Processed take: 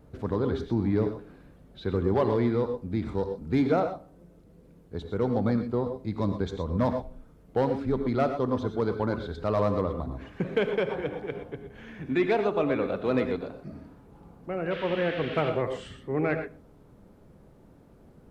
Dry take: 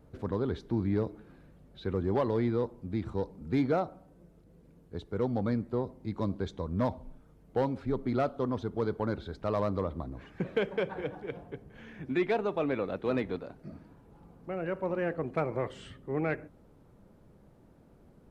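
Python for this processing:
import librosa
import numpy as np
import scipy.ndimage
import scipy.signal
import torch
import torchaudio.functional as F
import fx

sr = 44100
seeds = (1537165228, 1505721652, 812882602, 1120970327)

y = fx.dmg_noise_band(x, sr, seeds[0], low_hz=1300.0, high_hz=3300.0, level_db=-45.0, at=(14.7, 15.49), fade=0.02)
y = fx.rev_gated(y, sr, seeds[1], gate_ms=140, shape='rising', drr_db=7.0)
y = y * librosa.db_to_amplitude(3.5)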